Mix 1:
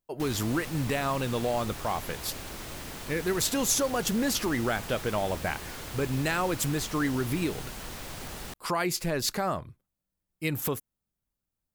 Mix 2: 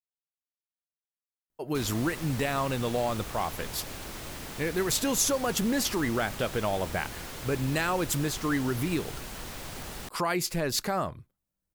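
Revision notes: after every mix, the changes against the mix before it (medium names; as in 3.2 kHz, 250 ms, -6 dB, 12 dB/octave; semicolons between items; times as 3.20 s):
speech: entry +1.50 s; background: entry +1.55 s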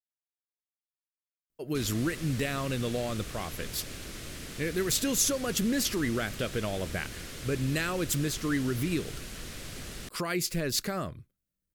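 background: add low-pass 12 kHz 12 dB/octave; master: add peaking EQ 870 Hz -12.5 dB 0.81 oct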